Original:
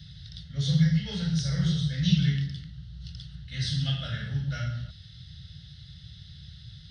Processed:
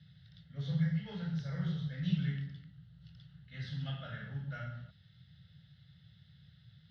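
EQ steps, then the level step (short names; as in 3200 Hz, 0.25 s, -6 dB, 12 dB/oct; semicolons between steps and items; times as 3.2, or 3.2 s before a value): dynamic EQ 950 Hz, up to +5 dB, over -52 dBFS, Q 1.1; BPF 140–2100 Hz; -7.5 dB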